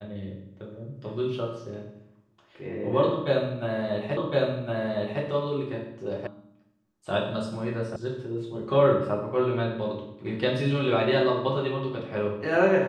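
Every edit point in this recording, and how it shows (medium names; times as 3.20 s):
4.17 s: repeat of the last 1.06 s
6.27 s: sound stops dead
7.96 s: sound stops dead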